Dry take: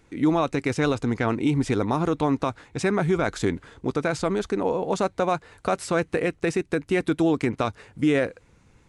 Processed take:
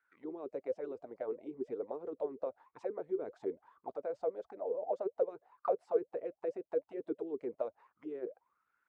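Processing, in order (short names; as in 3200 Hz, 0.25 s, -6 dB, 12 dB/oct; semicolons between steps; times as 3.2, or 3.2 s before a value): auto-wah 380–1500 Hz, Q 17, down, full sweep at -17.5 dBFS; harmonic-percussive split harmonic -14 dB; gain +5 dB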